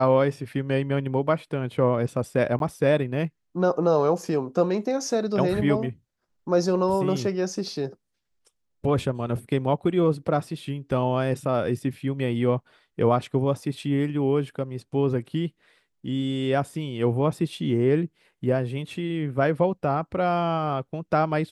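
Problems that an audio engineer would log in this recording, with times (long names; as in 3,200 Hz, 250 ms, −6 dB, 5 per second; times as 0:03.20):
0:02.59–0:02.60: drop-out 12 ms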